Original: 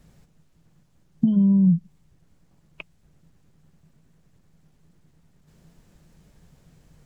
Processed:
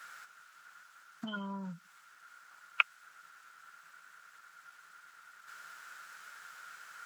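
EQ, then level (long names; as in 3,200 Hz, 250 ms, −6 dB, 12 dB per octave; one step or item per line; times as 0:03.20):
high-pass with resonance 1,400 Hz, resonance Q 13
+9.0 dB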